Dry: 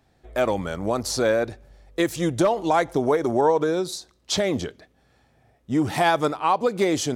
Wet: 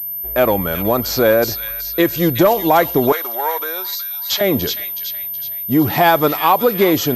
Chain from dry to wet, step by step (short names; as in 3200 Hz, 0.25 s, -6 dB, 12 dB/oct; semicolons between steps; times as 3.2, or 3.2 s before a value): thin delay 0.372 s, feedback 44%, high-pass 2600 Hz, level -3.5 dB; in parallel at -9 dB: hard clip -16.5 dBFS, distortion -14 dB; 3.12–4.41 on the sum: HPF 1100 Hz 12 dB/oct; pulse-width modulation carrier 13000 Hz; gain +5 dB